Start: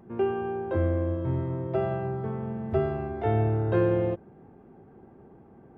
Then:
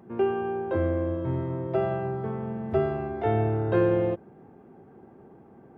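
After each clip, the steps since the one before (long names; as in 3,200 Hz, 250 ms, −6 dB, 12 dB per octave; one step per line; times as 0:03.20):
high-pass filter 130 Hz 6 dB per octave
level +2 dB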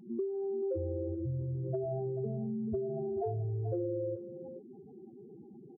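expanding power law on the bin magnitudes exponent 3.8
downward compressor, threshold −33 dBFS, peak gain reduction 12.5 dB
on a send: single-tap delay 436 ms −11 dB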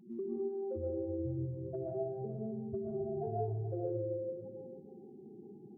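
convolution reverb RT60 0.95 s, pre-delay 85 ms, DRR −3 dB
level −5.5 dB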